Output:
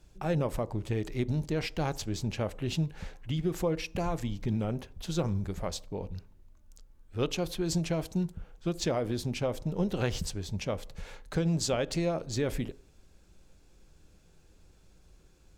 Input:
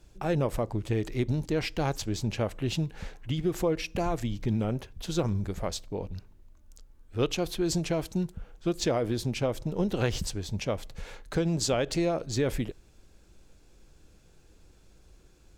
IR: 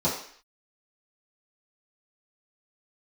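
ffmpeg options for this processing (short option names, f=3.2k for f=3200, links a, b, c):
-filter_complex "[0:a]asplit=2[a][b];[1:a]atrim=start_sample=2205,lowpass=1.3k[c];[b][c]afir=irnorm=-1:irlink=0,volume=-28.5dB[d];[a][d]amix=inputs=2:normalize=0,volume=-2.5dB"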